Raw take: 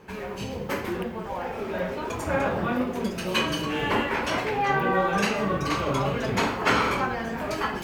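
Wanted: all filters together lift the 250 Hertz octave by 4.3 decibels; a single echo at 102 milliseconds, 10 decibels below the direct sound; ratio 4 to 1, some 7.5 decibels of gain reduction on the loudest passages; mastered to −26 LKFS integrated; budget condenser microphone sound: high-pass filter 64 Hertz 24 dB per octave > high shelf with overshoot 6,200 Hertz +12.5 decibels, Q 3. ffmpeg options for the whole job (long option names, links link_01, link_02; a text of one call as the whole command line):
ffmpeg -i in.wav -af "equalizer=frequency=250:width_type=o:gain=5.5,acompressor=threshold=-26dB:ratio=4,highpass=frequency=64:width=0.5412,highpass=frequency=64:width=1.3066,highshelf=frequency=6200:width_type=q:width=3:gain=12.5,aecho=1:1:102:0.316,volume=3dB" out.wav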